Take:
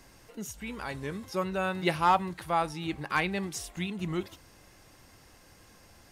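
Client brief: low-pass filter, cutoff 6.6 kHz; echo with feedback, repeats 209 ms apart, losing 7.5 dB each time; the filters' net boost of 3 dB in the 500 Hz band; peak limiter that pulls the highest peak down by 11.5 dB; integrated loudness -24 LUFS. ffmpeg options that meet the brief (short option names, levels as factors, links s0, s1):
-af "lowpass=6600,equalizer=f=500:t=o:g=4,alimiter=limit=0.0631:level=0:latency=1,aecho=1:1:209|418|627|836|1045:0.422|0.177|0.0744|0.0312|0.0131,volume=3.35"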